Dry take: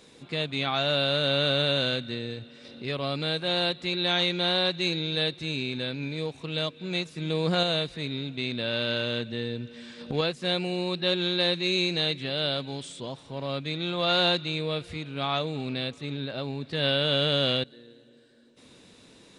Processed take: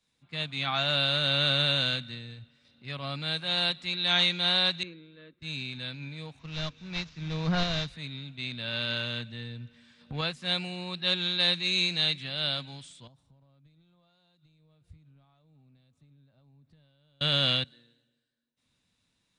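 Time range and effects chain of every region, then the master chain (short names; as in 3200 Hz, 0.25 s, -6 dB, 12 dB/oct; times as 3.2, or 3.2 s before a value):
4.83–5.42 LPF 1100 Hz + fixed phaser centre 320 Hz, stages 4 + mismatched tape noise reduction decoder only
6.39–7.88 CVSD 32 kbps + low shelf 66 Hz +10.5 dB
13.07–17.21 compressor 10:1, threshold -39 dBFS + bell 2200 Hz -12.5 dB 2.7 oct
whole clip: bell 410 Hz -14 dB 1.3 oct; three-band expander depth 70%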